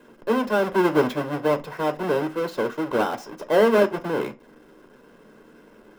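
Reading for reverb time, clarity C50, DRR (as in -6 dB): not exponential, 19.0 dB, 7.5 dB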